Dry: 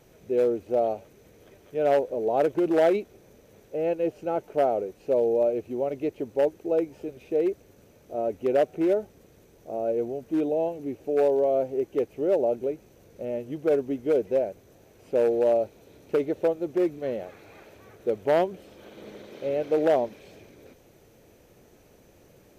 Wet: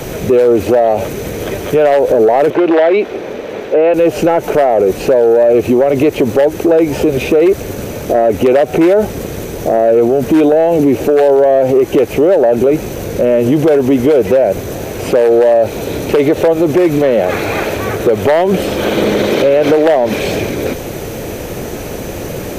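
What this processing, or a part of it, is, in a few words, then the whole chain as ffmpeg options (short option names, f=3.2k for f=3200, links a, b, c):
mastering chain: -filter_complex "[0:a]equalizer=f=5k:t=o:w=0.77:g=-1.5,acrossover=split=140|610[a][b][c];[a]acompressor=threshold=-54dB:ratio=4[d];[b]acompressor=threshold=-32dB:ratio=4[e];[c]acompressor=threshold=-28dB:ratio=4[f];[d][e][f]amix=inputs=3:normalize=0,acompressor=threshold=-30dB:ratio=2.5,asoftclip=type=tanh:threshold=-24dB,asoftclip=type=hard:threshold=-27dB,alimiter=level_in=36dB:limit=-1dB:release=50:level=0:latency=1,asettb=1/sr,asplit=3[g][h][i];[g]atrim=end=2.504[j];[h]atrim=start=2.5:end=3.94,asetpts=PTS-STARTPTS,afade=t=in:d=0.004:c=qsin,afade=t=out:st=1.436:d=0.004:c=qsin,acrossover=split=240 4100:gain=0.141 1 0.1[k][l][m];[k][l][m]amix=inputs=3:normalize=0[n];[i]atrim=start=3.936[o];[j][n]acrossfade=d=0.004:c1=hsin:c2=qsin[p];[p][o]acrossfade=d=0.004:c1=qsin:c2=hsin,volume=-2.5dB"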